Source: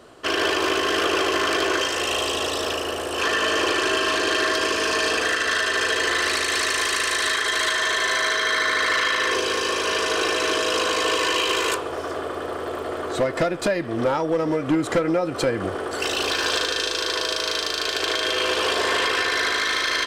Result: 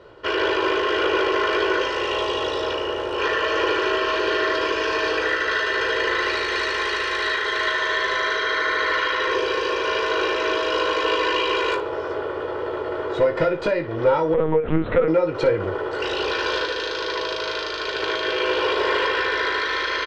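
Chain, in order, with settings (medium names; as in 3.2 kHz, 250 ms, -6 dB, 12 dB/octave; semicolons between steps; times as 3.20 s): distance through air 230 m; comb 2.1 ms, depth 60%; early reflections 19 ms -7 dB, 57 ms -13 dB; 14.34–15.08 s: LPC vocoder at 8 kHz pitch kept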